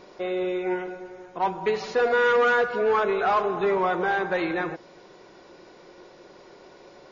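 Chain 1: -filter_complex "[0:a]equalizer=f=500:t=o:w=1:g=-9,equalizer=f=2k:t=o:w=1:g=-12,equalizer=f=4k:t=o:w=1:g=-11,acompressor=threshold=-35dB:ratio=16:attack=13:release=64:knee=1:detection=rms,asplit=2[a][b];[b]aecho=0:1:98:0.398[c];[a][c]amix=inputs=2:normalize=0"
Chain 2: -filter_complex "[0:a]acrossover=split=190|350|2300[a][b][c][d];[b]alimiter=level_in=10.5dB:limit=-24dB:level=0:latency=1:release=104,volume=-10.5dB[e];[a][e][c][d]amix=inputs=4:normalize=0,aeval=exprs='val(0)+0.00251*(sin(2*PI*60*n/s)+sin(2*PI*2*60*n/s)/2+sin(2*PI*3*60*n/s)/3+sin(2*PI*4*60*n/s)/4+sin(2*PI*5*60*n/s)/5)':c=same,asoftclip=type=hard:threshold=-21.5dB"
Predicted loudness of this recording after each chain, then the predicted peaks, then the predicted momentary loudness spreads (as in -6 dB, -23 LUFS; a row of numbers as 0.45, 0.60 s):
-38.0, -27.0 LUFS; -26.5, -21.5 dBFS; 19, 9 LU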